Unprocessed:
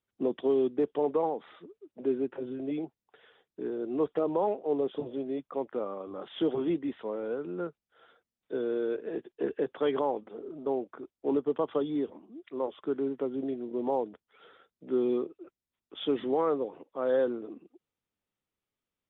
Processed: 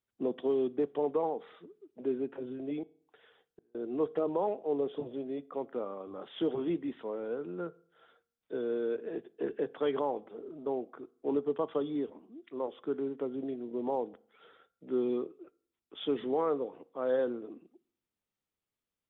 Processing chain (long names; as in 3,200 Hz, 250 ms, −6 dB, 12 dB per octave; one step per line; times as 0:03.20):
0:02.83–0:03.75: gate with flip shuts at −42 dBFS, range −37 dB
convolution reverb RT60 0.55 s, pre-delay 3 ms, DRR 18.5 dB
level −3 dB